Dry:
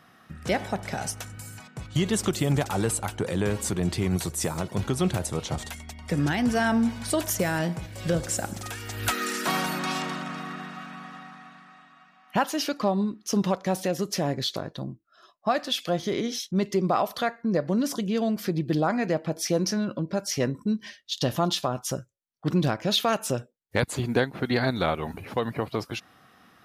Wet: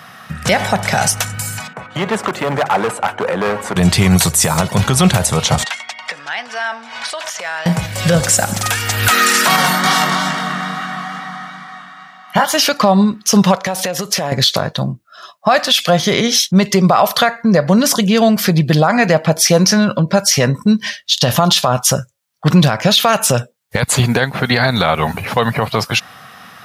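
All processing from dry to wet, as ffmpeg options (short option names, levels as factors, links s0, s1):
-filter_complex "[0:a]asettb=1/sr,asplit=3[s0][s1][s2];[s0]atrim=end=1.734[s3];[s1]atrim=start=1.73:end=3.76,asetpts=PTS-STARTPTS,afade=t=in:d=0.004:c=qsin,afade=t=out:st=2.026:d=0.004:c=qsin,acrossover=split=240 2100:gain=0.1 1 0.0794[s4][s5][s6];[s4][s5][s6]amix=inputs=3:normalize=0,bandreject=f=50:t=h:w=6,bandreject=f=100:t=h:w=6,bandreject=f=150:t=h:w=6,asoftclip=type=hard:threshold=0.0473[s7];[s2]atrim=start=3.756[s8];[s3][s7]acrossfade=d=0.004:c1=hsin:c2=qsin[s9];[s9][s8]acrossfade=d=0.004:c1=qsin:c2=hsin,asettb=1/sr,asplit=3[s10][s11][s12];[s10]atrim=end=5.644[s13];[s11]atrim=start=5.64:end=7.66,asetpts=PTS-STARTPTS,afade=t=in:d=0.004:c=qsin,afade=t=out:st=2.016:d=0.004:c=qsin,acompressor=threshold=0.0251:ratio=8:attack=3.2:release=140:knee=1:detection=peak,highpass=750,lowpass=4400[s14];[s12]atrim=start=7.656[s15];[s13][s14]acrossfade=d=0.004:c1=hsin:c2=qsin[s16];[s16][s15]acrossfade=d=0.004:c1=qsin:c2=hsin,asettb=1/sr,asplit=3[s17][s18][s19];[s17]atrim=end=9.564[s20];[s18]atrim=start=9.56:end=12.54,asetpts=PTS-STARTPTS,afade=t=in:d=0.004:c=qsin,afade=t=out:st=2.976:d=0.004:c=qsin,asuperstop=centerf=2600:order=8:qfactor=7.3,flanger=delay=17:depth=5.7:speed=2.3,aecho=1:1:286:0.447,atrim=end_sample=131418[s21];[s19]atrim=start=12.536[s22];[s20][s21]acrossfade=d=0.004:c1=hsin:c2=qsin[s23];[s23][s22]acrossfade=d=0.004:c1=qsin:c2=hsin,asettb=1/sr,asplit=3[s24][s25][s26];[s24]atrim=end=13.554[s27];[s25]atrim=start=13.55:end=14.32,asetpts=PTS-STARTPTS,afade=t=in:d=0.004:c=qsin,afade=t=out:st=0.766:d=0.004:c=qsin,bass=f=250:g=-7,treble=f=4000:g=-2,acompressor=threshold=0.0316:ratio=12:attack=3.2:release=140:knee=1:detection=peak[s28];[s26]atrim=start=14.316[s29];[s27][s28]acrossfade=d=0.004:c1=hsin:c2=qsin[s30];[s30][s29]acrossfade=d=0.004:c1=qsin:c2=hsin,highpass=110,equalizer=f=320:w=1.5:g=-14,alimiter=level_in=11.2:limit=0.891:release=50:level=0:latency=1,volume=0.891"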